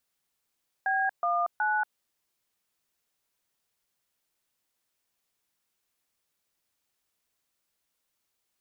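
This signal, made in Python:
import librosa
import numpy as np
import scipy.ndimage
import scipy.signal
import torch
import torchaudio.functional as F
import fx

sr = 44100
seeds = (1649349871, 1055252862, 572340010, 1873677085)

y = fx.dtmf(sr, digits='B19', tone_ms=234, gap_ms=136, level_db=-26.5)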